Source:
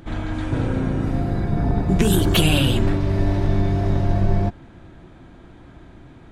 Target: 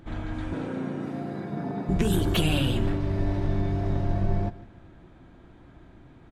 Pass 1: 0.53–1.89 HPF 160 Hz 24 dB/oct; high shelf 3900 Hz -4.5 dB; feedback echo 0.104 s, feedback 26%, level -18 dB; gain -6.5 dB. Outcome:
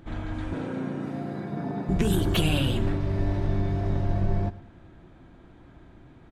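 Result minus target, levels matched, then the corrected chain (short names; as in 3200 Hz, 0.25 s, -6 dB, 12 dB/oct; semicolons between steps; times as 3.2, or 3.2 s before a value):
echo 46 ms early
0.53–1.89 HPF 160 Hz 24 dB/oct; high shelf 3900 Hz -4.5 dB; feedback echo 0.15 s, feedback 26%, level -18 dB; gain -6.5 dB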